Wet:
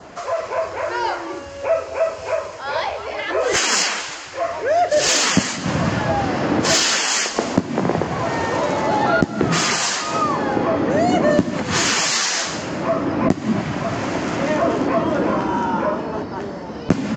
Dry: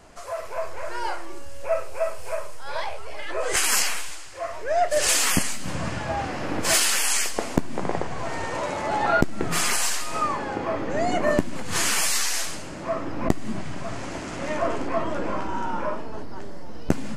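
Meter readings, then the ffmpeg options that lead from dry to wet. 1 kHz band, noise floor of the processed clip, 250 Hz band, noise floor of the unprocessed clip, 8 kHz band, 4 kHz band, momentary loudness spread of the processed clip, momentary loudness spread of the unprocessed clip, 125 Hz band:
+6.5 dB, −32 dBFS, +9.5 dB, −34 dBFS, +2.5 dB, +6.5 dB, 9 LU, 14 LU, +8.0 dB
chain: -filter_complex "[0:a]highshelf=frequency=4100:gain=-7.5,asoftclip=type=tanh:threshold=-9dB,adynamicequalizer=threshold=0.00501:dfrequency=2400:dqfactor=3.3:tfrequency=2400:tqfactor=3.3:attack=5:release=100:ratio=0.375:range=2:mode=cutabove:tftype=bell,acrossover=split=440|3000[link_01][link_02][link_03];[link_02]acompressor=threshold=-36dB:ratio=2[link_04];[link_01][link_04][link_03]amix=inputs=3:normalize=0,highpass=110,aresample=16000,aresample=44100,acontrast=39,asplit=2[link_05][link_06];[link_06]aecho=0:1:211:0.126[link_07];[link_05][link_07]amix=inputs=2:normalize=0,aeval=exprs='0.501*(cos(1*acos(clip(val(0)/0.501,-1,1)))-cos(1*PI/2))+0.0282*(cos(5*acos(clip(val(0)/0.501,-1,1)))-cos(5*PI/2))':channel_layout=same,volume=4.5dB"

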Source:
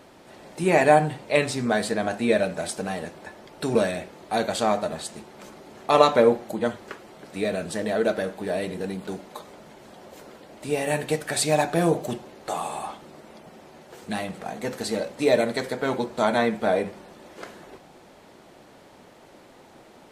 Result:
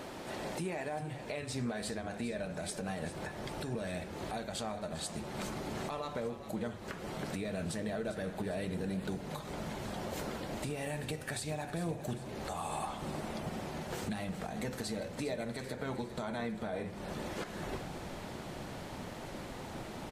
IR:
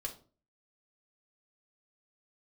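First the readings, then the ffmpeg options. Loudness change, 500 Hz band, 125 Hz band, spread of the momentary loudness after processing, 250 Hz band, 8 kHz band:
−15.0 dB, −15.5 dB, −6.0 dB, 6 LU, −10.0 dB, −10.0 dB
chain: -filter_complex "[0:a]asubboost=boost=2.5:cutoff=200,acompressor=threshold=-38dB:ratio=4,alimiter=level_in=10dB:limit=-24dB:level=0:latency=1:release=232,volume=-10dB,asplit=2[link_01][link_02];[link_02]asplit=5[link_03][link_04][link_05][link_06][link_07];[link_03]adelay=401,afreqshift=-41,volume=-12.5dB[link_08];[link_04]adelay=802,afreqshift=-82,volume=-18.5dB[link_09];[link_05]adelay=1203,afreqshift=-123,volume=-24.5dB[link_10];[link_06]adelay=1604,afreqshift=-164,volume=-30.6dB[link_11];[link_07]adelay=2005,afreqshift=-205,volume=-36.6dB[link_12];[link_08][link_09][link_10][link_11][link_12]amix=inputs=5:normalize=0[link_13];[link_01][link_13]amix=inputs=2:normalize=0,volume=6dB"

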